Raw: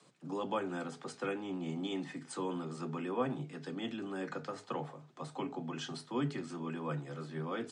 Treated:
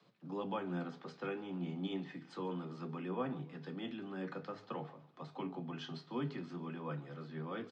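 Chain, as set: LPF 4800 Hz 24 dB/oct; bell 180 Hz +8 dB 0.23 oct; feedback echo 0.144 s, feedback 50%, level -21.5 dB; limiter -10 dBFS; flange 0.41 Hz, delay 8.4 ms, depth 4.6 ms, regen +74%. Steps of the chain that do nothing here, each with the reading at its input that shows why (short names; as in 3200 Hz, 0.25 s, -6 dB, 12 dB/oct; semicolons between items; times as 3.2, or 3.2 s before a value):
limiter -10 dBFS: input peak -21.0 dBFS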